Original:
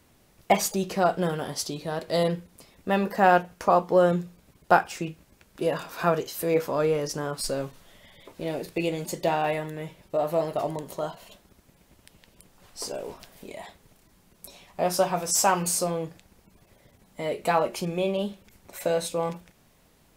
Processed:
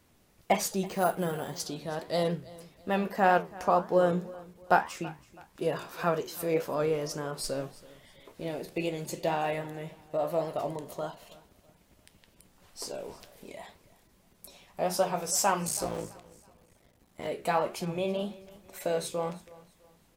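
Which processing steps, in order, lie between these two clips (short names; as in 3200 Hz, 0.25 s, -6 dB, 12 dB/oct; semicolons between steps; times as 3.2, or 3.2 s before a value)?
15.67–17.27 cycle switcher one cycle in 3, muted; flange 1.8 Hz, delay 8.5 ms, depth 8.6 ms, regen +80%; vibrato 7 Hz 20 cents; on a send: feedback echo 0.328 s, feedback 35%, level -20.5 dB; 0.86–1.6 on the sum: careless resampling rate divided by 4×, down filtered, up hold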